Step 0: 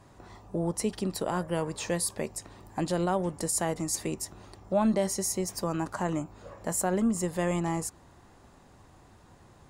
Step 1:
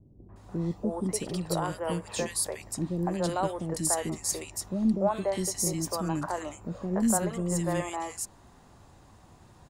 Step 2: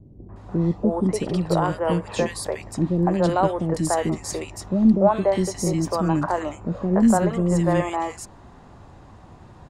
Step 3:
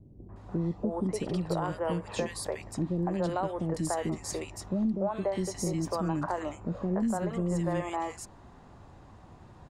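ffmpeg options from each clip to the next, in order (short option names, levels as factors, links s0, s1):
-filter_complex "[0:a]acrossover=split=400|1800[s0][s1][s2];[s1]adelay=290[s3];[s2]adelay=360[s4];[s0][s3][s4]amix=inputs=3:normalize=0,volume=1.19"
-af "aemphasis=mode=reproduction:type=75fm,volume=2.66"
-af "acompressor=threshold=0.1:ratio=6,volume=0.501"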